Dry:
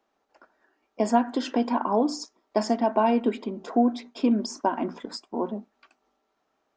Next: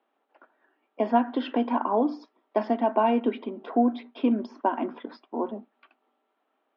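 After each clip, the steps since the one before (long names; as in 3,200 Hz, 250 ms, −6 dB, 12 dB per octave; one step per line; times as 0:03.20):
elliptic band-pass filter 240–3,300 Hz, stop band 40 dB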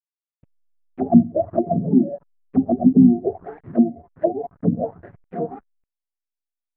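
frequency axis turned over on the octave scale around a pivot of 410 Hz
slack as between gear wheels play −40.5 dBFS
envelope-controlled low-pass 270–2,700 Hz down, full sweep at −20.5 dBFS
level +2 dB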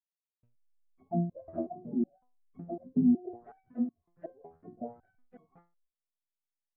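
step-sequenced resonator 5.4 Hz 82–1,100 Hz
level −5 dB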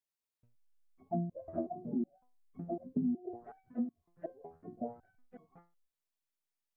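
downward compressor 5 to 1, threshold −32 dBFS, peak gain reduction 11 dB
level +1 dB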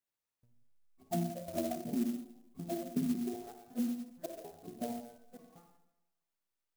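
convolution reverb RT60 0.90 s, pre-delay 44 ms, DRR 4 dB
converter with an unsteady clock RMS 0.075 ms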